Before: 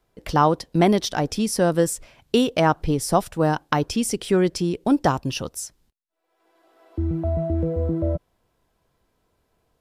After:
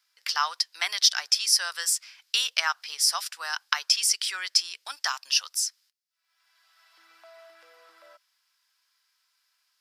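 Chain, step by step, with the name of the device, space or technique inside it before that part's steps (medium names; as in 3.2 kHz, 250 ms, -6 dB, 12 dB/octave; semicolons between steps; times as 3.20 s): headphones lying on a table (high-pass 1.4 kHz 24 dB/octave; peaking EQ 5 kHz +11 dB 0.49 oct); trim +2.5 dB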